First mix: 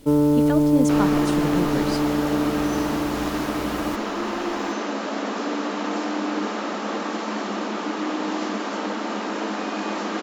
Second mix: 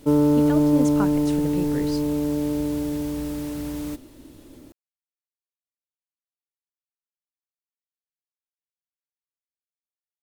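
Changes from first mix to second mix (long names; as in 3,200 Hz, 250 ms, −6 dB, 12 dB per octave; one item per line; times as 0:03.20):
speech −3.5 dB
second sound: muted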